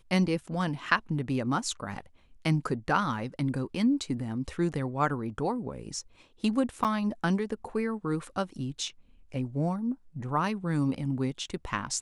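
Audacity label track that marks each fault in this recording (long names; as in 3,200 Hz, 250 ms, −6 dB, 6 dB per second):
6.840000	6.850000	drop-out 7.4 ms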